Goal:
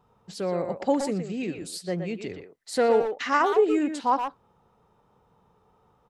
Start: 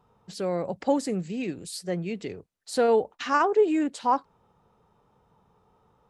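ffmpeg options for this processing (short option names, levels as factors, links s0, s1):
-filter_complex "[0:a]asettb=1/sr,asplit=3[s0][s1][s2];[s0]atrim=end=2.314[s3];[s1]atrim=start=2.31:end=3.5,asetpts=PTS-STARTPTS,afade=t=in:d=0.004:c=qsin,afade=t=out:st=1.186:d=0.004:c=qsin,equalizer=f=2000:w=6.7:g=11[s4];[s2]atrim=start=3.496[s5];[s3][s4]acrossfade=d=0.004:c1=hsin:c2=qsin[s6];[s6][s5]acrossfade=d=0.004:c1=qsin:c2=hsin,asplit=2[s7][s8];[s8]adelay=120,highpass=300,lowpass=3400,asoftclip=type=hard:threshold=0.126,volume=0.501[s9];[s7][s9]amix=inputs=2:normalize=0"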